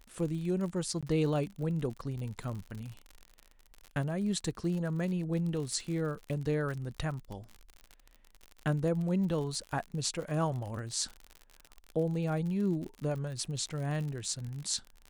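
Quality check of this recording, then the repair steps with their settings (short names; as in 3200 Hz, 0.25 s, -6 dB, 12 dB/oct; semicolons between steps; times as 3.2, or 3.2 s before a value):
crackle 57/s -38 dBFS
1.01–1.03 gap 16 ms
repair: de-click; interpolate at 1.01, 16 ms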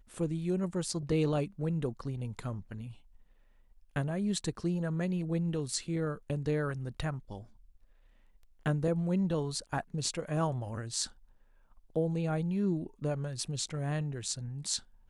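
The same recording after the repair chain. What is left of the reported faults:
none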